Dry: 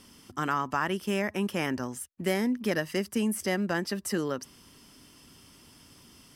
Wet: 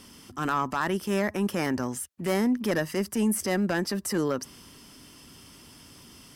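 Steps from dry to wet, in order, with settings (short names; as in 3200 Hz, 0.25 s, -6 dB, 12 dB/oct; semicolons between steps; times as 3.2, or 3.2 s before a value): added harmonics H 4 -24 dB, 5 -16 dB, 6 -31 dB, 7 -26 dB, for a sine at -14 dBFS; dynamic EQ 3000 Hz, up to -5 dB, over -44 dBFS, Q 1.2; transient shaper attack -5 dB, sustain +1 dB; gain +1.5 dB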